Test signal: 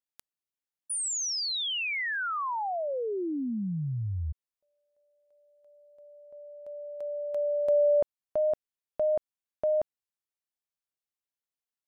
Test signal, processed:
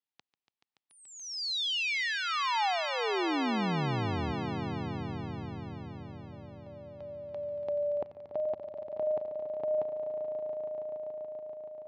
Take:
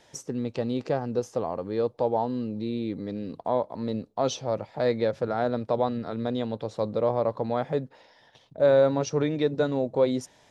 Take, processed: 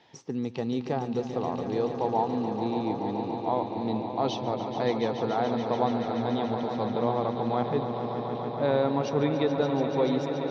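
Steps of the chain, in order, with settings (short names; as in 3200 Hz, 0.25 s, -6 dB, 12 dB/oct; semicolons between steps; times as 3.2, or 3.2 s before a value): speaker cabinet 110–4500 Hz, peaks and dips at 570 Hz -9 dB, 810 Hz +4 dB, 1500 Hz -5 dB; swelling echo 0.143 s, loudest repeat 5, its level -11 dB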